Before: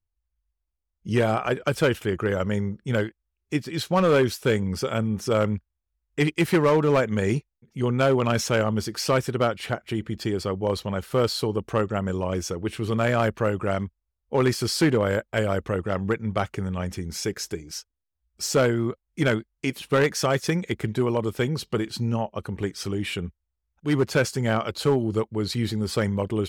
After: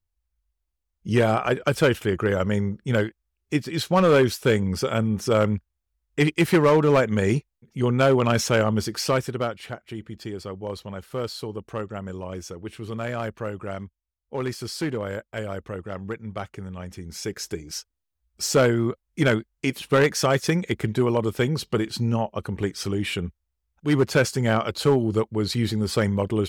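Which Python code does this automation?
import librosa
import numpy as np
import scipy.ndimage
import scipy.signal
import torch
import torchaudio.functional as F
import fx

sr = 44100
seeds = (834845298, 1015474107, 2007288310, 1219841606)

y = fx.gain(x, sr, db=fx.line((8.92, 2.0), (9.74, -7.0), (16.88, -7.0), (17.68, 2.0)))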